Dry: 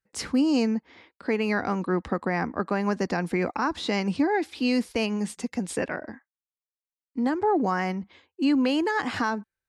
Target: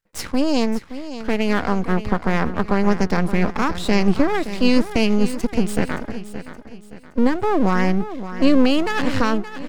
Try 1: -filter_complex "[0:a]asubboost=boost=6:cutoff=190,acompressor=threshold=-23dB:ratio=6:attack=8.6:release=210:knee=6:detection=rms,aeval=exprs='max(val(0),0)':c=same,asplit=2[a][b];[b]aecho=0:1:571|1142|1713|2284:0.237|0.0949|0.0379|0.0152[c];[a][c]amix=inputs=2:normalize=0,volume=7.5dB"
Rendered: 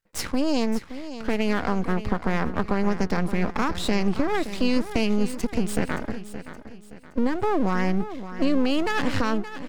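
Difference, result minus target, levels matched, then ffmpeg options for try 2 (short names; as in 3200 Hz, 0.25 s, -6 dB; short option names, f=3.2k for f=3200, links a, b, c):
compressor: peak gain reduction +8.5 dB
-filter_complex "[0:a]asubboost=boost=6:cutoff=190,aeval=exprs='max(val(0),0)':c=same,asplit=2[a][b];[b]aecho=0:1:571|1142|1713|2284:0.237|0.0949|0.0379|0.0152[c];[a][c]amix=inputs=2:normalize=0,volume=7.5dB"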